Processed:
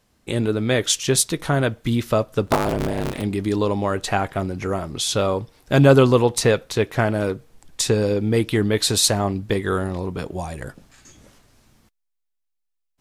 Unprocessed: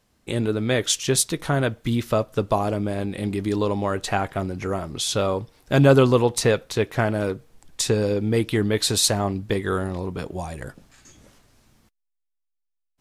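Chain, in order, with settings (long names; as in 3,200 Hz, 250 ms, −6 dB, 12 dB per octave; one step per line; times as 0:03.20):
0:02.47–0:03.22: sub-harmonics by changed cycles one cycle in 3, inverted
level +2 dB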